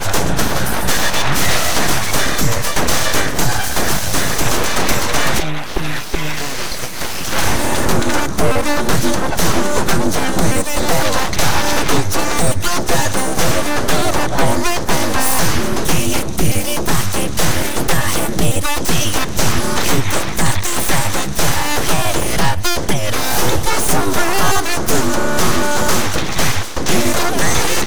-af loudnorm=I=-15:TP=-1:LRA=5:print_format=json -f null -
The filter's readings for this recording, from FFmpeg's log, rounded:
"input_i" : "-16.9",
"input_tp" : "-1.0",
"input_lra" : "1.3",
"input_thresh" : "-26.9",